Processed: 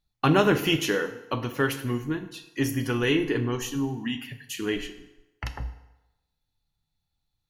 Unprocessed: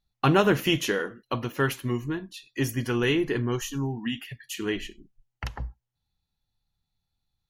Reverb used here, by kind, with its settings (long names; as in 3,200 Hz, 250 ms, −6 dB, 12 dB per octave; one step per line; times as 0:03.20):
feedback delay network reverb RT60 1 s, low-frequency decay 0.8×, high-frequency decay 0.8×, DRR 8 dB